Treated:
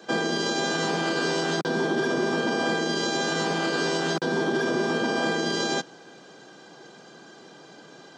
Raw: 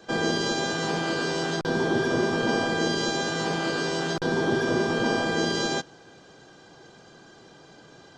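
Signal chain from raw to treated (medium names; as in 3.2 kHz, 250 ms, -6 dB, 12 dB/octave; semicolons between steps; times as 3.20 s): peak limiter -19 dBFS, peak gain reduction 7.5 dB; high-pass 160 Hz 24 dB/octave; trim +3 dB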